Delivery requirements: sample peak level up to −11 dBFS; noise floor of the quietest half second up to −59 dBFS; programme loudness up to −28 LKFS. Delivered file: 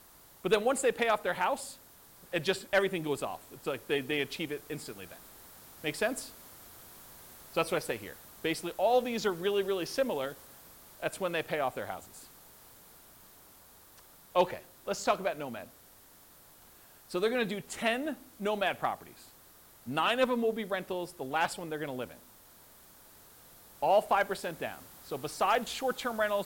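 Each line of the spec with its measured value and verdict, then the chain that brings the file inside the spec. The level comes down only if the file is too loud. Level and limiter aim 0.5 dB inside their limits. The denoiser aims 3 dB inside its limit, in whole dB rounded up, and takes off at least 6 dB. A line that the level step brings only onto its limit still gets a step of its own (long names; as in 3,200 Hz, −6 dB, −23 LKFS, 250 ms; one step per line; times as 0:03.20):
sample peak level −14.0 dBFS: in spec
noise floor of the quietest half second −57 dBFS: out of spec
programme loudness −32.5 LKFS: in spec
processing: broadband denoise 6 dB, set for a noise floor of −57 dBFS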